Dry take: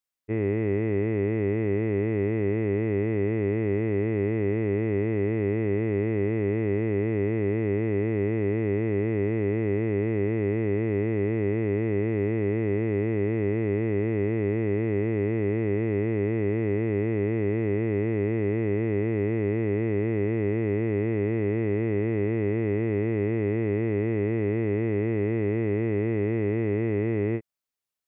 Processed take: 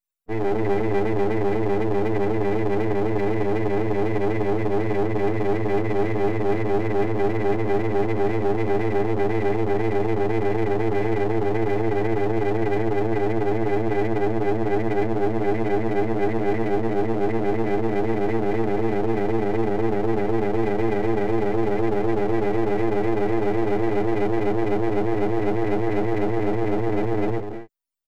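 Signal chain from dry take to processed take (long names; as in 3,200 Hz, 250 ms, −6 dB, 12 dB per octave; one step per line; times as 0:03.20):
high-pass filter 62 Hz 6 dB per octave
high-shelf EQ 2,700 Hz +10.5 dB
loudspeakers that aren't time-aligned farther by 12 metres −6 dB, 71 metres −10 dB, 91 metres −12 dB
spectral peaks only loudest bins 16
half-wave rectification
level +7.5 dB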